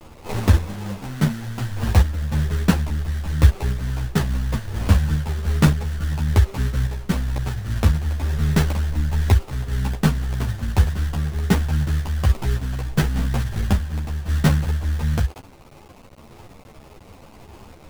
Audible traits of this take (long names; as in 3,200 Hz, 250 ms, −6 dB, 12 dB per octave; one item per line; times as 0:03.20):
aliases and images of a low sample rate 1,700 Hz, jitter 20%
sample-and-hold tremolo
a quantiser's noise floor 8 bits, dither none
a shimmering, thickened sound